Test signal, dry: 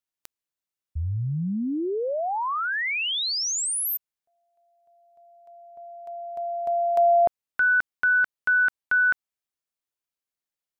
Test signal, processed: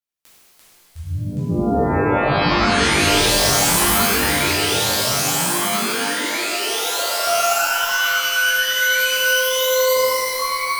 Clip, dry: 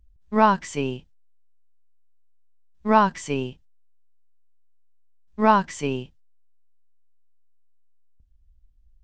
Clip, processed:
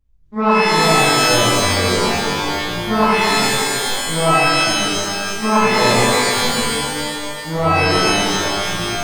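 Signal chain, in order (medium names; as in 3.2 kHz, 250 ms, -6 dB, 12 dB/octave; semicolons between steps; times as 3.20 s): ever faster or slower copies 256 ms, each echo -5 st, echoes 3; hum notches 50/100/150 Hz; loudness maximiser +7.5 dB; pitch-shifted reverb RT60 2.3 s, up +12 st, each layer -2 dB, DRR -11 dB; trim -14.5 dB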